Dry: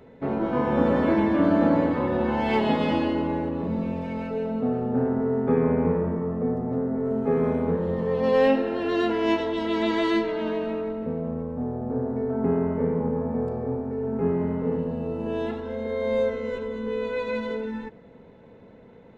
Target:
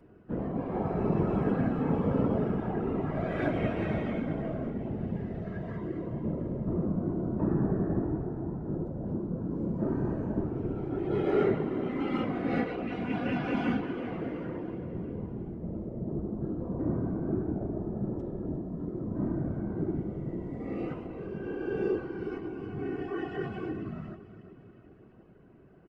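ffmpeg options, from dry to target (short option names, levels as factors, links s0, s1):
-af "aecho=1:1:260|520|780|1040|1300:0.178|0.0996|0.0558|0.0312|0.0175,afftfilt=real='hypot(re,im)*cos(2*PI*random(0))':imag='hypot(re,im)*sin(2*PI*random(1))':win_size=512:overlap=0.75,asetrate=32667,aresample=44100,volume=0.891"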